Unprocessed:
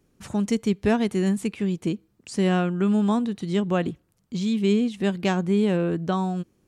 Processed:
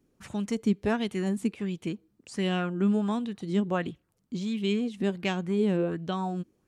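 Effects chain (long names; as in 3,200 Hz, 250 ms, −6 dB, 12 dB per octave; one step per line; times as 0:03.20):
auto-filter bell 1.4 Hz 240–3,400 Hz +9 dB
level −7 dB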